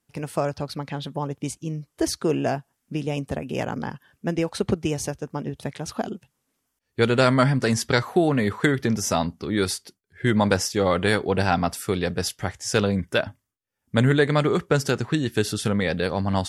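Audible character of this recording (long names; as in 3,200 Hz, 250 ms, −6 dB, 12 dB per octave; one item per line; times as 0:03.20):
background noise floor −77 dBFS
spectral slope −5.0 dB per octave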